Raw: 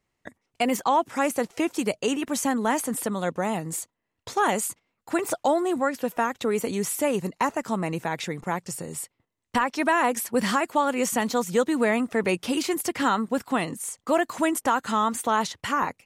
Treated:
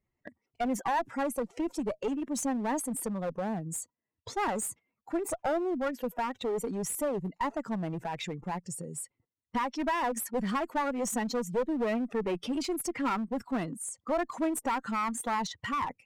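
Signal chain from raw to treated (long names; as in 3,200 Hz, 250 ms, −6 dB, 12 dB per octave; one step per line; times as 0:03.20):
expanding power law on the bin magnitudes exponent 1.8
asymmetric clip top −26 dBFS
level −4.5 dB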